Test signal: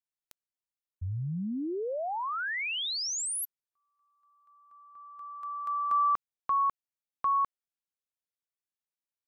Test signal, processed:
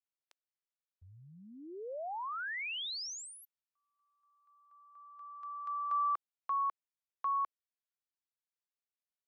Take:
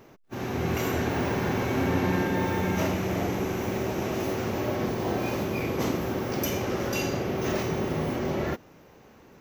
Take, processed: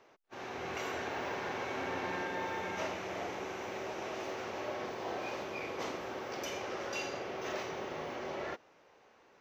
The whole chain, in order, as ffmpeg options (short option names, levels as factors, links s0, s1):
-filter_complex "[0:a]acrossover=split=420 6700:gain=0.141 1 0.1[s0][s1][s2];[s0][s1][s2]amix=inputs=3:normalize=0,volume=0.501"